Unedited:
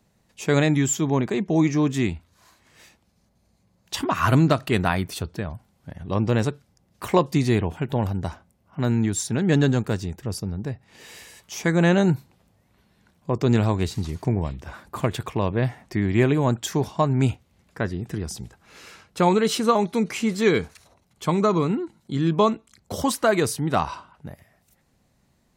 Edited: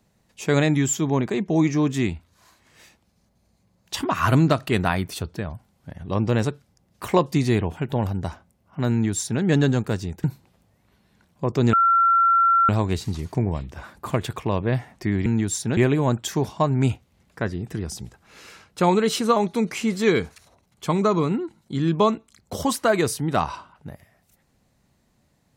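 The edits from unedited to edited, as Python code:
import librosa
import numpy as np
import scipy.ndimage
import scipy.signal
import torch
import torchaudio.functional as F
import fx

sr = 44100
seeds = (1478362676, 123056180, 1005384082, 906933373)

y = fx.edit(x, sr, fx.duplicate(start_s=8.91, length_s=0.51, to_s=16.16),
    fx.cut(start_s=10.24, length_s=1.86),
    fx.insert_tone(at_s=13.59, length_s=0.96, hz=1360.0, db=-14.0), tone=tone)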